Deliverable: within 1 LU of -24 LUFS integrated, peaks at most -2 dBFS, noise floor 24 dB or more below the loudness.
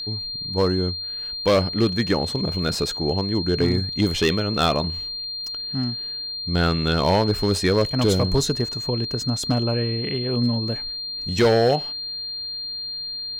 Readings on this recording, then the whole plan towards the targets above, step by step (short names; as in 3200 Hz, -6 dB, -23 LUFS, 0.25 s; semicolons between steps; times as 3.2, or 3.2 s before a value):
clipped 1.1%; flat tops at -12.0 dBFS; steady tone 4200 Hz; tone level -28 dBFS; loudness -22.5 LUFS; peak -12.0 dBFS; loudness target -24.0 LUFS
-> clip repair -12 dBFS; notch 4200 Hz, Q 30; gain -1.5 dB